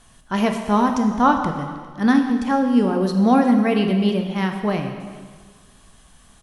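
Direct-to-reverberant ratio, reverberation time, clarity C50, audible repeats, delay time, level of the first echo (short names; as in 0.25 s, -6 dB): 4.0 dB, 1.6 s, 6.0 dB, 1, 0.403 s, -22.5 dB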